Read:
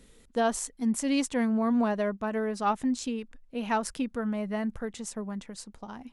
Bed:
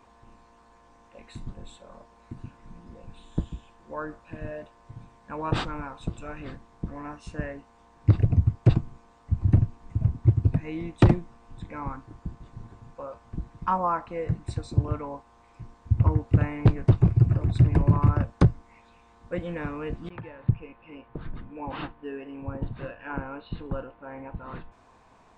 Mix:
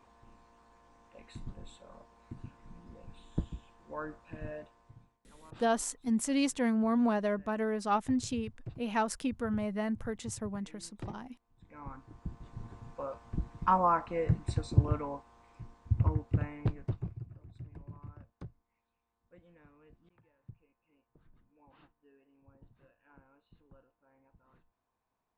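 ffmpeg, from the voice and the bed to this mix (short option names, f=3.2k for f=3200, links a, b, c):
-filter_complex "[0:a]adelay=5250,volume=-2.5dB[a];[1:a]volume=19dB,afade=t=out:st=4.55:d=0.64:silence=0.1,afade=t=in:st=11.56:d=1.19:silence=0.0595662,afade=t=out:st=14.62:d=2.65:silence=0.0446684[b];[a][b]amix=inputs=2:normalize=0"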